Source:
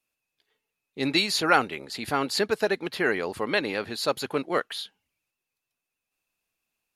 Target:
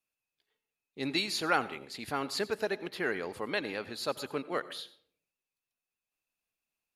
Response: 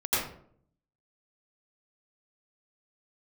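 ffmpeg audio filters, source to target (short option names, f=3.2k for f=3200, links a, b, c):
-filter_complex "[0:a]asplit=2[a][b];[1:a]atrim=start_sample=2205,highshelf=f=10k:g=7[c];[b][c]afir=irnorm=-1:irlink=0,volume=-26.5dB[d];[a][d]amix=inputs=2:normalize=0,volume=-8dB"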